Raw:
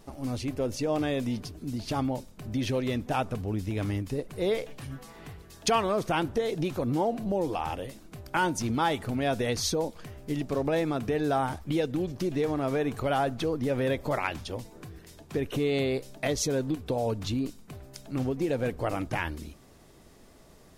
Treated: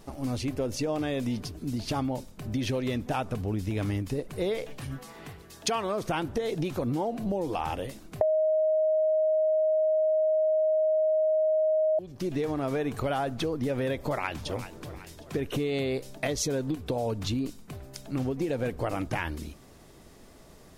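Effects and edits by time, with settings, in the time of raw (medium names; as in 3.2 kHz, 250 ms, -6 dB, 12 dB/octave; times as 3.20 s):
4.99–6.02 s: bass shelf 78 Hz -11 dB
8.21–11.99 s: bleep 626 Hz -6 dBFS
14.04–14.75 s: echo throw 380 ms, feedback 50%, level -16.5 dB
whole clip: compression, threshold -28 dBFS; trim +2.5 dB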